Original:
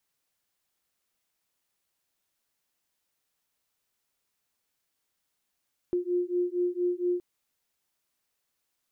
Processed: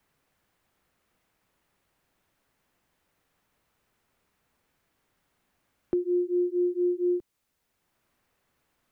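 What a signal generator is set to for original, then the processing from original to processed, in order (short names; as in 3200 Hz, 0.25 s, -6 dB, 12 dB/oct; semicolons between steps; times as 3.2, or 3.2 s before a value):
beating tones 353 Hz, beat 4.3 Hz, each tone -28.5 dBFS 1.27 s
low shelf 270 Hz +6.5 dB; three-band squash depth 40%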